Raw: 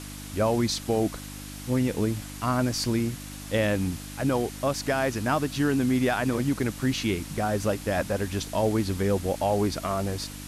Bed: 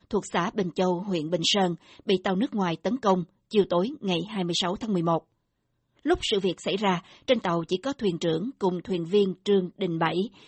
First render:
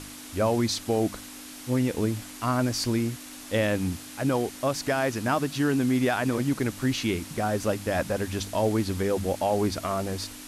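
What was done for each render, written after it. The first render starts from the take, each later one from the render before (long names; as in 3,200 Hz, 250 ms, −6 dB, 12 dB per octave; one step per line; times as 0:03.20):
hum removal 50 Hz, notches 4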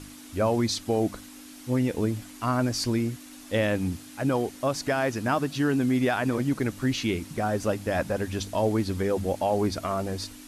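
broadband denoise 6 dB, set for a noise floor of −43 dBFS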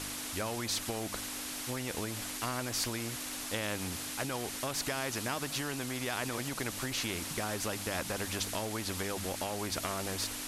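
downward compressor, threshold −26 dBFS, peak gain reduction 7 dB
every bin compressed towards the loudest bin 2 to 1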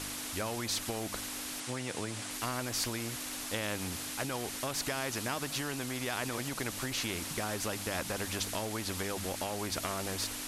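0:01.60–0:02.31: elliptic band-pass filter 100–9,700 Hz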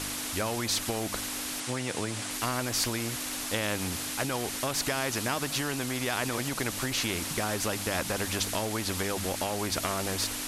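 level +5 dB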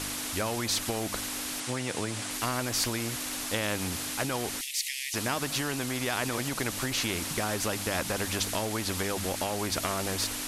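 0:04.61–0:05.14: Butterworth high-pass 1,900 Hz 96 dB per octave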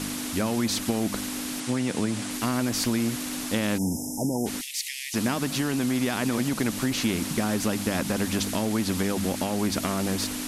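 0:03.78–0:04.46: time-frequency box erased 960–5,000 Hz
parametric band 220 Hz +12 dB 1.2 octaves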